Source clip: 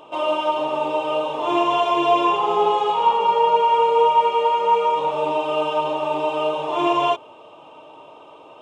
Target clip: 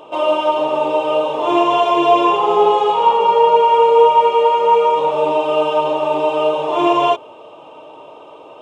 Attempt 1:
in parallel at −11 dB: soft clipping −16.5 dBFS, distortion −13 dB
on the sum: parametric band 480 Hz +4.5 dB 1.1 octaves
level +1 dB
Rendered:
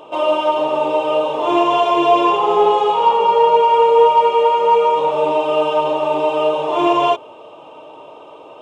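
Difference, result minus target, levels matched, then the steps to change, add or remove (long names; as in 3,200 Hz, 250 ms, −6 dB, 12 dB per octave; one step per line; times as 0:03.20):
soft clipping: distortion +17 dB
change: soft clipping −4.5 dBFS, distortion −30 dB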